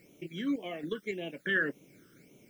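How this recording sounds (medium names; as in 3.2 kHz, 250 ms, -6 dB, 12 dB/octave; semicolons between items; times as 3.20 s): random-step tremolo 3.6 Hz, depth 70%; a quantiser's noise floor 12-bit, dither triangular; phasing stages 12, 1.8 Hz, lowest notch 740–1600 Hz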